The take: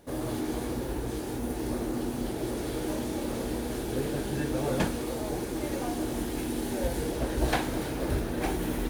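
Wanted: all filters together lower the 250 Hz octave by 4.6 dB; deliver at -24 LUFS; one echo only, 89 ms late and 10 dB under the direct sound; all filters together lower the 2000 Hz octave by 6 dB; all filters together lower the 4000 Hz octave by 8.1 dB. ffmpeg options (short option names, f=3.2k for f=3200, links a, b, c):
-af "equalizer=f=250:t=o:g=-6,equalizer=f=2k:t=o:g=-6,equalizer=f=4k:t=o:g=-8.5,aecho=1:1:89:0.316,volume=10dB"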